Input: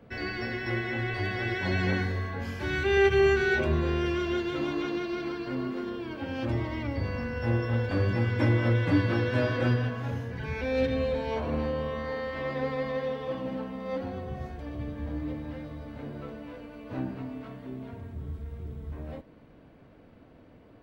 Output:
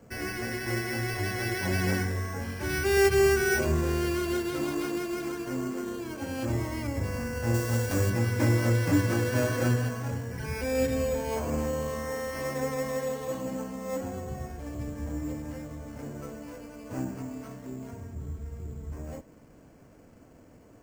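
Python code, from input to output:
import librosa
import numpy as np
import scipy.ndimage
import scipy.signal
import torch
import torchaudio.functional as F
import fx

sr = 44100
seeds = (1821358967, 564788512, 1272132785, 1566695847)

y = np.repeat(scipy.signal.resample_poly(x, 1, 6), 6)[:len(x)]
y = fx.high_shelf(y, sr, hz=4000.0, db=8.0, at=(7.54, 8.1))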